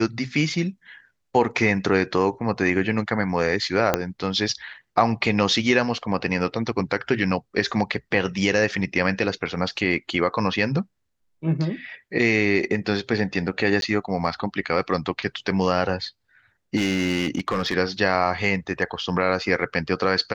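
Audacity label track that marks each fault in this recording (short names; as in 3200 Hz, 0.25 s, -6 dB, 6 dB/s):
3.940000	3.940000	pop -4 dBFS
13.810000	13.820000	gap 12 ms
16.760000	17.740000	clipped -17.5 dBFS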